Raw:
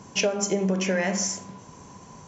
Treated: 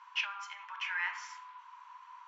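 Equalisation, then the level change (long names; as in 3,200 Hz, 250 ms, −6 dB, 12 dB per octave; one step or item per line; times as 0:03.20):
Chebyshev high-pass with heavy ripple 910 Hz, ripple 3 dB
high-frequency loss of the air 470 metres
+3.5 dB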